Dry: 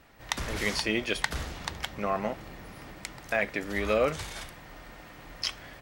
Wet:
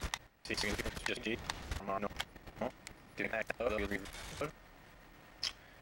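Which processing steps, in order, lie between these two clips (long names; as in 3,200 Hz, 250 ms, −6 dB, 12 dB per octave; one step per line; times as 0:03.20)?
slices reordered back to front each 90 ms, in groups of 5
output level in coarse steps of 11 dB
level −3 dB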